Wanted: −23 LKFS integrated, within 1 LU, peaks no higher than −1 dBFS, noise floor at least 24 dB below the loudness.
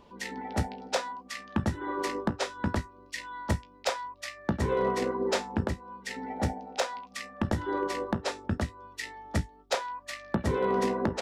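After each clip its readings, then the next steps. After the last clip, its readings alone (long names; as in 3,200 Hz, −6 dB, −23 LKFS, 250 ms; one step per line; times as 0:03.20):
share of clipped samples 0.2%; peaks flattened at −18.5 dBFS; integrated loudness −32.5 LKFS; sample peak −18.5 dBFS; target loudness −23.0 LKFS
→ clipped peaks rebuilt −18.5 dBFS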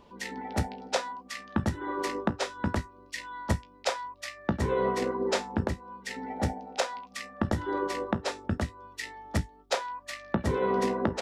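share of clipped samples 0.0%; integrated loudness −32.0 LKFS; sample peak −10.5 dBFS; target loudness −23.0 LKFS
→ level +9 dB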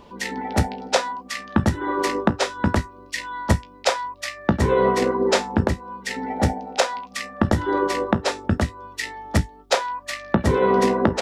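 integrated loudness −23.0 LKFS; sample peak −1.5 dBFS; background noise floor −47 dBFS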